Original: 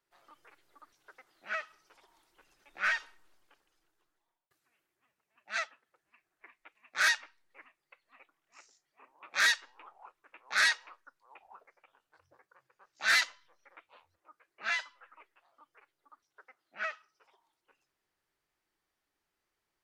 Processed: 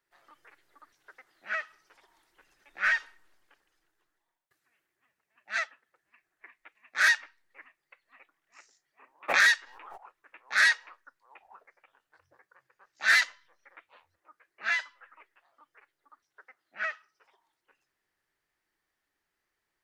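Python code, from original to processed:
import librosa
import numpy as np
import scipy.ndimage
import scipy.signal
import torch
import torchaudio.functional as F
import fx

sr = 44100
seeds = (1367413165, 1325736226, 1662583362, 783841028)

y = fx.peak_eq(x, sr, hz=1800.0, db=6.5, octaves=0.47)
y = fx.pre_swell(y, sr, db_per_s=36.0, at=(9.28, 9.96), fade=0.02)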